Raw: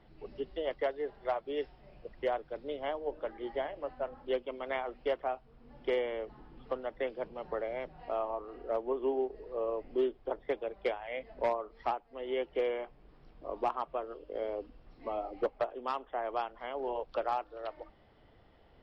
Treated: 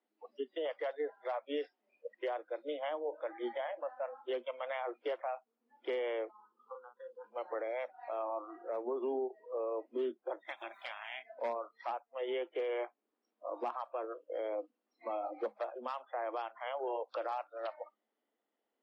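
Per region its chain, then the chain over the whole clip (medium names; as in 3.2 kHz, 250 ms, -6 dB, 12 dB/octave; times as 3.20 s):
6.31–7.24 s: compression 3:1, threshold -45 dBFS + static phaser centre 430 Hz, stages 8 + doubling 38 ms -6 dB
10.47–11.21 s: spectral peaks clipped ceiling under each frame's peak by 21 dB + compression 3:1, threshold -44 dBFS
whole clip: spectral noise reduction 25 dB; peak limiter -32 dBFS; Chebyshev high-pass 210 Hz, order 10; trim +3.5 dB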